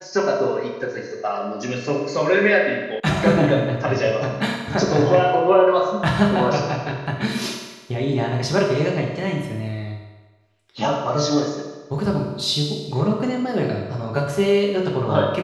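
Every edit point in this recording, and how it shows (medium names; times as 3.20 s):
3.00 s: sound stops dead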